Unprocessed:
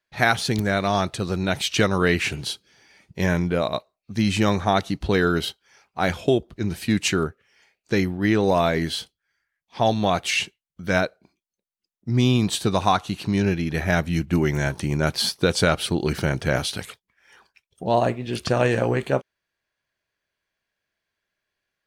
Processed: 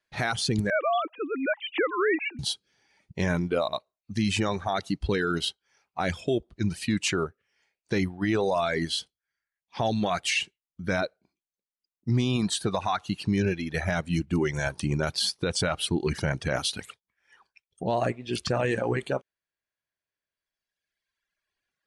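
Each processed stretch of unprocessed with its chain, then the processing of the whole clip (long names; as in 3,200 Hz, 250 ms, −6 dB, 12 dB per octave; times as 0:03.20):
0:00.70–0:02.39: three sine waves on the formant tracks + low-pass filter 2,200 Hz + low-shelf EQ 290 Hz −6 dB
whole clip: Butterworth low-pass 11,000 Hz 72 dB per octave; reverb reduction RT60 2 s; brickwall limiter −16.5 dBFS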